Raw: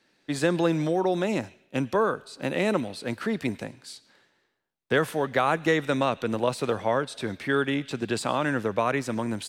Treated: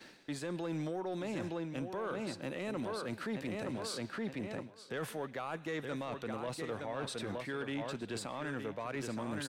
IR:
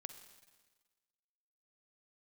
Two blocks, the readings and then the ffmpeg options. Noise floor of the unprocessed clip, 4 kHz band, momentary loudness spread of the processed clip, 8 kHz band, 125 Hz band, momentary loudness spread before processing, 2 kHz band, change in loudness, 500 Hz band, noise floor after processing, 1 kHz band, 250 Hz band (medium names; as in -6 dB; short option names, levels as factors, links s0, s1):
-71 dBFS, -9.5 dB, 2 LU, -8.0 dB, -10.5 dB, 9 LU, -13.0 dB, -13.0 dB, -13.0 dB, -54 dBFS, -14.0 dB, -11.0 dB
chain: -filter_complex "[0:a]asplit=2[s0][s1];[s1]adelay=918,lowpass=f=4900:p=1,volume=0.355,asplit=2[s2][s3];[s3]adelay=918,lowpass=f=4900:p=1,volume=0.21,asplit=2[s4][s5];[s5]adelay=918,lowpass=f=4900:p=1,volume=0.21[s6];[s2][s4][s6]amix=inputs=3:normalize=0[s7];[s0][s7]amix=inputs=2:normalize=0,acompressor=mode=upward:threshold=0.0141:ratio=2.5,agate=range=0.0224:threshold=0.00708:ratio=3:detection=peak,areverse,acompressor=threshold=0.0141:ratio=6,areverse,asoftclip=type=tanh:threshold=0.0282,alimiter=level_in=4.73:limit=0.0631:level=0:latency=1:release=217,volume=0.211,volume=2.11"